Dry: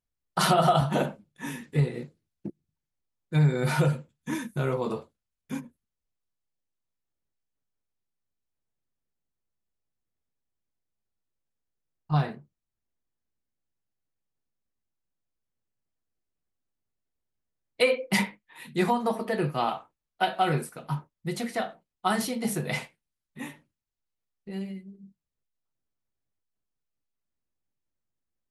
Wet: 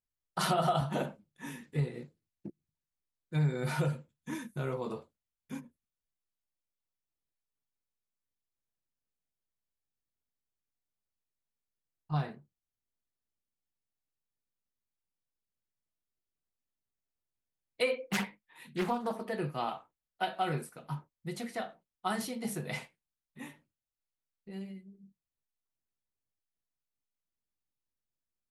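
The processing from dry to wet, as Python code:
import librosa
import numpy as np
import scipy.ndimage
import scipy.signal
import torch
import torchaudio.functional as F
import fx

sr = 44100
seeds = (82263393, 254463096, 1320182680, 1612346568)

y = fx.doppler_dist(x, sr, depth_ms=0.43, at=(18.12, 19.26))
y = y * 10.0 ** (-7.5 / 20.0)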